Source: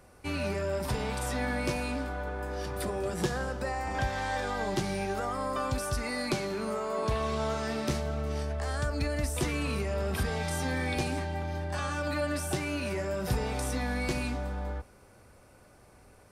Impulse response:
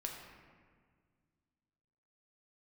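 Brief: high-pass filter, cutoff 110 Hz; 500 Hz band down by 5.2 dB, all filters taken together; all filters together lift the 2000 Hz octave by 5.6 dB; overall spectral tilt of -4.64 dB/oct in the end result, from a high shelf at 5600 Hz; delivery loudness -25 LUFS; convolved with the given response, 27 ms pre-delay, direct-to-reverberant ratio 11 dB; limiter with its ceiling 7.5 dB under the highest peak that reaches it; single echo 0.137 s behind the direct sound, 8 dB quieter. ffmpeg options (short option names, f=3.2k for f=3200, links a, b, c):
-filter_complex "[0:a]highpass=110,equalizer=f=500:t=o:g=-7,equalizer=f=2k:t=o:g=8.5,highshelf=f=5.6k:g=-7,alimiter=level_in=0.5dB:limit=-24dB:level=0:latency=1,volume=-0.5dB,aecho=1:1:137:0.398,asplit=2[a][b];[1:a]atrim=start_sample=2205,adelay=27[c];[b][c]afir=irnorm=-1:irlink=0,volume=-10.5dB[d];[a][d]amix=inputs=2:normalize=0,volume=8dB"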